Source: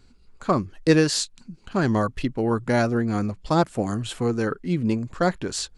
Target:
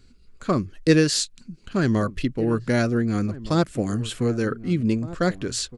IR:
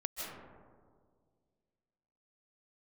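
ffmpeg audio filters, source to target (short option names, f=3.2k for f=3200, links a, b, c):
-filter_complex "[0:a]equalizer=f=860:w=1.8:g=-10.5,asplit=2[a][b];[b]adelay=1516,volume=-16dB,highshelf=f=4k:g=-34.1[c];[a][c]amix=inputs=2:normalize=0,volume=1.5dB"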